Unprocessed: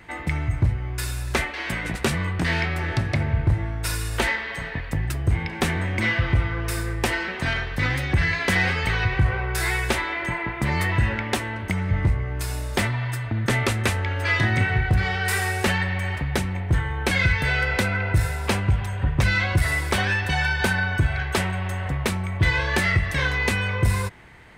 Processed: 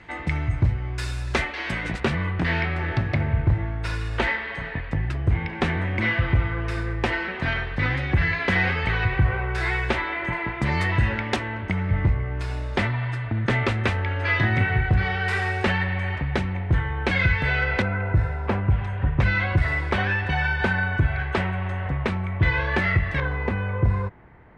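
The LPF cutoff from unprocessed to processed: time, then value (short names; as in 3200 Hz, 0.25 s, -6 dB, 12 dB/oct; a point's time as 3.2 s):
5500 Hz
from 2 s 3100 Hz
from 10.33 s 5500 Hz
from 11.36 s 3200 Hz
from 17.82 s 1500 Hz
from 18.71 s 2500 Hz
from 23.2 s 1200 Hz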